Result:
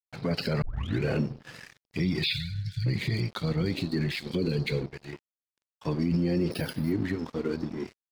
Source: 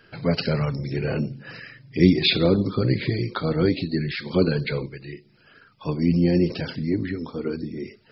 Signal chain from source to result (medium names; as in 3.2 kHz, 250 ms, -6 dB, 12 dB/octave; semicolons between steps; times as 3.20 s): 1.80–3.74 s: time-frequency box 230–1800 Hz -7 dB; 4.12–4.87 s: high-order bell 990 Hz -13 dB; crossover distortion -41.5 dBFS; peak limiter -18.5 dBFS, peak gain reduction 11.5 dB; 0.62 s: tape start 0.40 s; 2.24–2.86 s: brick-wall FIR band-stop 160–1400 Hz; 6.51–6.92 s: careless resampling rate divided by 3×, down filtered, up hold